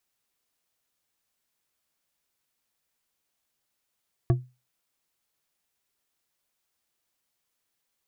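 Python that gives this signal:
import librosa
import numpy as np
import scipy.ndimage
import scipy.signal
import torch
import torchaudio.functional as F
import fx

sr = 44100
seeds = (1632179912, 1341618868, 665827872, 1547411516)

y = fx.strike_glass(sr, length_s=0.89, level_db=-14.5, body='bar', hz=126.0, decay_s=0.28, tilt_db=6.5, modes=5)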